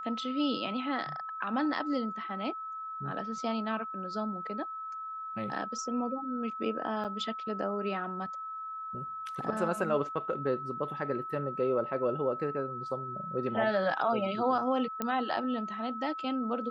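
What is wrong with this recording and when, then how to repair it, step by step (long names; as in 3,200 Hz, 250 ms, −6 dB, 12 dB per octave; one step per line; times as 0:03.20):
whistle 1,300 Hz −37 dBFS
0:07.04–0:07.05: drop-out 8.3 ms
0:15.02: click −17 dBFS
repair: click removal
notch filter 1,300 Hz, Q 30
repair the gap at 0:07.04, 8.3 ms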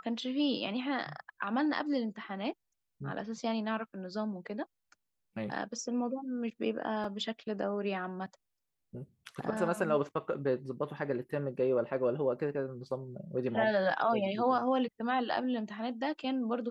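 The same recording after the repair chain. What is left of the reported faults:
none of them is left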